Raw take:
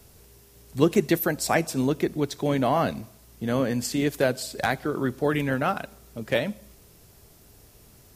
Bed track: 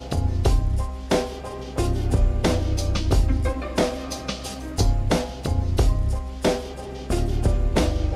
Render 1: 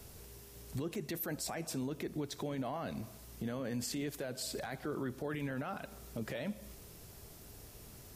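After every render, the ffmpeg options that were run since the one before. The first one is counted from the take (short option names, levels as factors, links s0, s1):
-af "acompressor=threshold=0.02:ratio=2.5,alimiter=level_in=2:limit=0.0631:level=0:latency=1:release=17,volume=0.501"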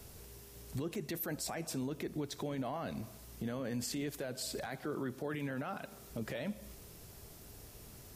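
-filter_complex "[0:a]asettb=1/sr,asplit=3[s0][s1][s2];[s0]atrim=end=4.674[s3];[s1]atrim=start=4.67:end=6.1,asetpts=PTS-STARTPTS,afade=t=in:d=0.004:c=qsin,afade=t=out:st=1.426:d=0.004:c=qsin,highpass=100[s4];[s2]atrim=start=6.096[s5];[s3][s4]acrossfade=d=0.004:c1=hsin:c2=qsin[s6];[s6][s5]acrossfade=d=0.004:c1=qsin:c2=hsin"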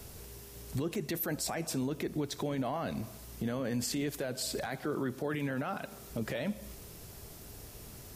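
-af "volume=1.68"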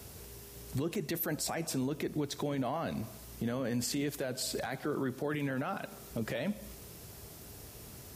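-af "highpass=54"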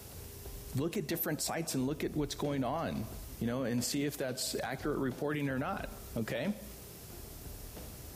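-filter_complex "[1:a]volume=0.0335[s0];[0:a][s0]amix=inputs=2:normalize=0"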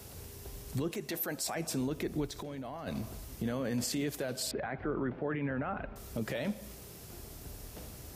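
-filter_complex "[0:a]asettb=1/sr,asplit=3[s0][s1][s2];[s0]atrim=end=0.914[s3];[s1]atrim=start=0.91:end=1.56,asetpts=PTS-STARTPTS,afade=t=in:d=0.004:c=qsin,afade=t=out:st=0.646:d=0.004:c=qsin,lowshelf=f=230:g=-9.5[s4];[s2]atrim=start=1.556[s5];[s3][s4]acrossfade=d=0.004:c1=hsin:c2=qsin[s6];[s6][s5]acrossfade=d=0.004:c1=qsin:c2=hsin,asplit=3[s7][s8][s9];[s7]afade=t=out:st=2.26:d=0.02[s10];[s8]acompressor=threshold=0.0126:ratio=5:attack=3.2:release=140:knee=1:detection=peak,afade=t=in:st=2.26:d=0.02,afade=t=out:st=2.86:d=0.02[s11];[s9]afade=t=in:st=2.86:d=0.02[s12];[s10][s11][s12]amix=inputs=3:normalize=0,asettb=1/sr,asplit=3[s13][s14][s15];[s13]atrim=end=4.514[s16];[s14]atrim=start=4.51:end=5.96,asetpts=PTS-STARTPTS,afade=t=in:d=0.004:c=qsin,afade=t=out:st=1.446:d=0.004:c=qsin,lowpass=f=2400:w=0.5412,lowpass=f=2400:w=1.3066[s17];[s15]atrim=start=5.956[s18];[s16][s17]acrossfade=d=0.004:c1=hsin:c2=qsin[s19];[s19][s18]acrossfade=d=0.004:c1=qsin:c2=hsin"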